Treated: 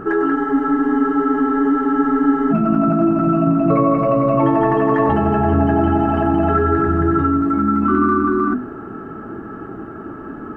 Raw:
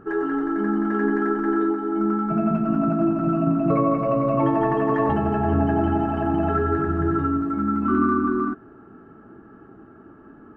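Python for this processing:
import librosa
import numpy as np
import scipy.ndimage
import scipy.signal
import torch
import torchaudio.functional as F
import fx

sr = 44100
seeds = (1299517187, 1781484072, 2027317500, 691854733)

p1 = fx.hum_notches(x, sr, base_hz=50, count=5)
p2 = fx.over_compress(p1, sr, threshold_db=-32.0, ratio=-1.0)
p3 = p1 + F.gain(torch.from_numpy(p2), -1.5).numpy()
p4 = fx.small_body(p3, sr, hz=(1300.0, 2000.0), ring_ms=95, db=6)
p5 = fx.spec_freeze(p4, sr, seeds[0], at_s=0.36, hold_s=2.15)
y = F.gain(torch.from_numpy(p5), 4.0).numpy()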